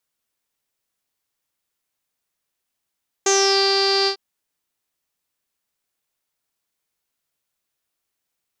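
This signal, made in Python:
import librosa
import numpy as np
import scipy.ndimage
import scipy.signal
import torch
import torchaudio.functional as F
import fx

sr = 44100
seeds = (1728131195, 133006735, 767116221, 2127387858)

y = fx.sub_voice(sr, note=67, wave='saw', cutoff_hz=4700.0, q=12.0, env_oct=0.5, env_s=0.32, attack_ms=5.5, decay_s=0.46, sustain_db=-3.0, release_s=0.09, note_s=0.81, slope=12)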